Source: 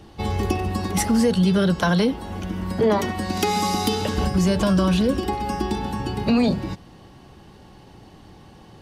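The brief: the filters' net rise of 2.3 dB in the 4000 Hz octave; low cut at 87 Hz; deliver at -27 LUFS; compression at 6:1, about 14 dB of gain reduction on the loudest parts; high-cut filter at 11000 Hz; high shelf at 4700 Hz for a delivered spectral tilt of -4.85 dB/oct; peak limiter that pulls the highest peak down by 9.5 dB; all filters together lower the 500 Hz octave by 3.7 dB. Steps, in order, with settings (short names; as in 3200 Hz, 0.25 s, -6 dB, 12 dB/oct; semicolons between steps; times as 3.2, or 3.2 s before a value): HPF 87 Hz; LPF 11000 Hz; bell 500 Hz -4.5 dB; bell 4000 Hz +7 dB; high shelf 4700 Hz -8 dB; compressor 6:1, threshold -32 dBFS; gain +10 dB; limiter -18 dBFS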